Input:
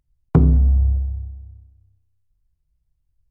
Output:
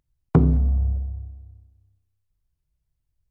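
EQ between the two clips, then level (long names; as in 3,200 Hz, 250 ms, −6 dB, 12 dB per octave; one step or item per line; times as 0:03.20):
low-shelf EQ 87 Hz −8.5 dB
0.0 dB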